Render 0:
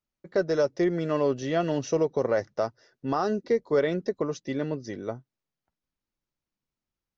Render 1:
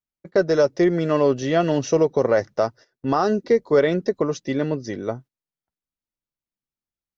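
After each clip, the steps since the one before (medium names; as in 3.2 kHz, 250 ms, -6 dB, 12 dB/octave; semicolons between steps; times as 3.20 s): gate -47 dBFS, range -14 dB; trim +6.5 dB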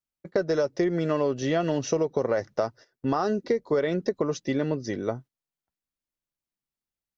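compression, threshold -20 dBFS, peak gain reduction 8 dB; trim -1 dB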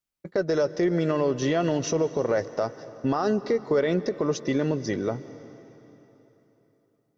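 peak limiter -18 dBFS, peak gain reduction 6.5 dB; plate-style reverb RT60 3.6 s, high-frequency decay 0.85×, pre-delay 115 ms, DRR 15 dB; trim +3 dB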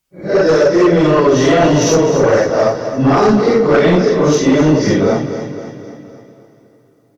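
phase randomisation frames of 200 ms; sine folder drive 8 dB, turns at -10 dBFS; on a send: feedback delay 258 ms, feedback 50%, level -11.5 dB; on the sum: trim +4 dB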